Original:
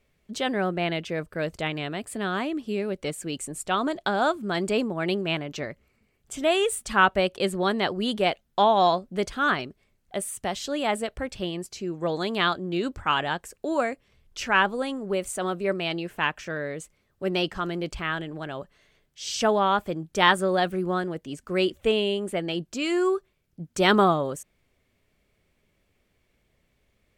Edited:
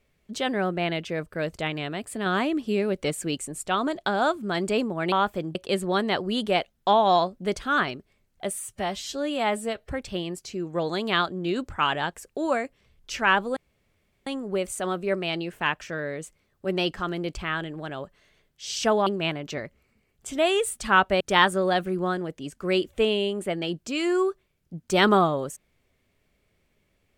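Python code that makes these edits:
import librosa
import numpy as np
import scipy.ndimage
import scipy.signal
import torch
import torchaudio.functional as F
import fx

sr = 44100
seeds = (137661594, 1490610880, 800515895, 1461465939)

y = fx.edit(x, sr, fx.clip_gain(start_s=2.26, length_s=1.09, db=3.5),
    fx.swap(start_s=5.12, length_s=2.14, other_s=19.64, other_length_s=0.43),
    fx.stretch_span(start_s=10.32, length_s=0.87, factor=1.5),
    fx.insert_room_tone(at_s=14.84, length_s=0.7), tone=tone)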